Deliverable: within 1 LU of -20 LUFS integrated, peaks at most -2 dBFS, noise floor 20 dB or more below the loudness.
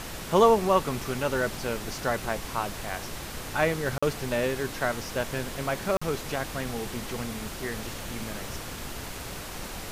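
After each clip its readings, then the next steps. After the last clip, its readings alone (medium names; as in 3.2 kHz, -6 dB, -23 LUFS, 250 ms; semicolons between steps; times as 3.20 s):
dropouts 2; longest dropout 45 ms; noise floor -38 dBFS; noise floor target -49 dBFS; loudness -29.0 LUFS; peak level -7.0 dBFS; loudness target -20.0 LUFS
-> interpolate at 3.98/5.97 s, 45 ms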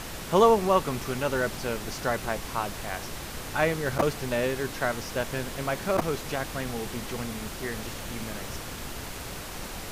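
dropouts 0; noise floor -38 dBFS; noise floor target -49 dBFS
-> noise print and reduce 11 dB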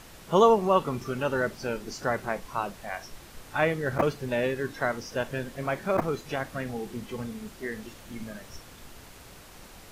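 noise floor -49 dBFS; loudness -28.5 LUFS; peak level -7.5 dBFS; loudness target -20.0 LUFS
-> trim +8.5 dB; peak limiter -2 dBFS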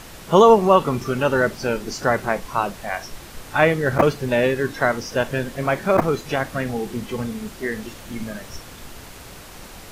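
loudness -20.5 LUFS; peak level -2.0 dBFS; noise floor -41 dBFS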